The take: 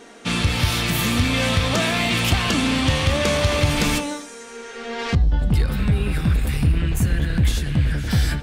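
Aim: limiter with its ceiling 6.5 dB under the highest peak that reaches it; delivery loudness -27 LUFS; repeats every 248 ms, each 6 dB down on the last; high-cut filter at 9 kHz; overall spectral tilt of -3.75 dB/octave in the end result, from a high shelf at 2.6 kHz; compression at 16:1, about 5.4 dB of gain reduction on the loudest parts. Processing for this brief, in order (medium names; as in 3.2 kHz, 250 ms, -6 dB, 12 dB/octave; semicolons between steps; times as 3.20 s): low-pass 9 kHz; treble shelf 2.6 kHz +7.5 dB; compression 16:1, threshold -18 dBFS; peak limiter -15 dBFS; feedback delay 248 ms, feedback 50%, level -6 dB; trim -4 dB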